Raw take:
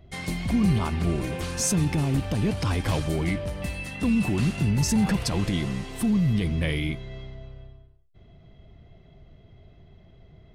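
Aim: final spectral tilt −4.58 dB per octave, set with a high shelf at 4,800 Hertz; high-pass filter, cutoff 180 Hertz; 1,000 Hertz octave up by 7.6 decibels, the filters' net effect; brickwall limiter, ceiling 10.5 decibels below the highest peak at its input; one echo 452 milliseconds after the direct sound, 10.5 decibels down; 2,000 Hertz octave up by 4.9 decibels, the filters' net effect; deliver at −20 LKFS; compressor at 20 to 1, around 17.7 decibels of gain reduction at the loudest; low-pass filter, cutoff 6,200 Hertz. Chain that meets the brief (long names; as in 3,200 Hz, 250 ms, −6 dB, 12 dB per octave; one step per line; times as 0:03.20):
high-pass filter 180 Hz
low-pass filter 6,200 Hz
parametric band 1,000 Hz +8.5 dB
parametric band 2,000 Hz +5 dB
high-shelf EQ 4,800 Hz −5.5 dB
downward compressor 20 to 1, threshold −37 dBFS
brickwall limiter −34.5 dBFS
single-tap delay 452 ms −10.5 dB
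level +23 dB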